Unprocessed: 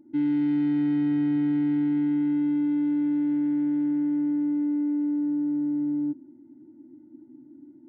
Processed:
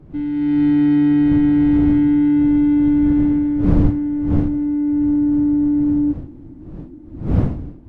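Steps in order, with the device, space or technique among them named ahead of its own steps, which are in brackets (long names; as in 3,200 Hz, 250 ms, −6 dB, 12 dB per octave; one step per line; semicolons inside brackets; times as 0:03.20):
smartphone video outdoors (wind on the microphone 150 Hz −30 dBFS; automatic gain control gain up to 10 dB; AAC 48 kbit/s 22,050 Hz)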